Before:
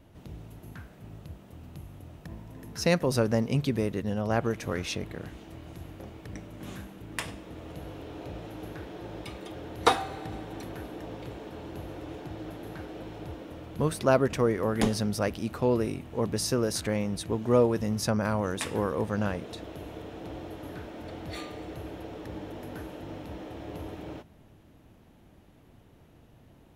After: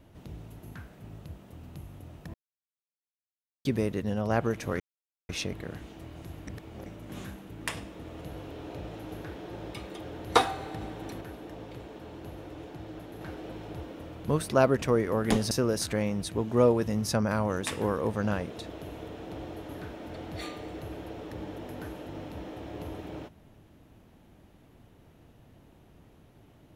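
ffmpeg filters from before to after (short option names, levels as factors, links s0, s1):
-filter_complex "[0:a]asplit=9[s0][s1][s2][s3][s4][s5][s6][s7][s8];[s0]atrim=end=2.34,asetpts=PTS-STARTPTS,afade=t=out:st=2.336:d=0.004:c=hsin[s9];[s1]atrim=start=2.34:end=3.65,asetpts=PTS-STARTPTS,volume=0[s10];[s2]atrim=start=3.65:end=4.8,asetpts=PTS-STARTPTS,afade=t=in:d=0.004:c=hsin,afade=t=out:st=1.146:d=0.004:c=hsin,apad=pad_dur=0.49[s11];[s3]atrim=start=4.8:end=5.982,asetpts=PTS-STARTPTS,afade=t=in:d=0.004:c=hsin[s12];[s4]atrim=start=5.978:end=6.372,asetpts=PTS-STARTPTS,areverse[s13];[s5]atrim=start=6.368:end=10.722[s14];[s6]atrim=start=10.718:end=12.722,asetpts=PTS-STARTPTS,volume=0.708[s15];[s7]atrim=start=12.718:end=15.022[s16];[s8]atrim=start=16.448[s17];[s9][s10][s11][s12]concat=n=4:v=0:a=1[s18];[s18][s13]acrossfade=d=0.004:c1=hsin:c2=hsin[s19];[s19][s14]acrossfade=d=0.004:c1=hsin:c2=hsin[s20];[s20][s15]acrossfade=d=0.004:c1=hsin:c2=hsin[s21];[s21][s16]acrossfade=d=0.004:c1=hsin:c2=hsin[s22];[s22][s17]acrossfade=d=0.004:c1=hsin:c2=hsin"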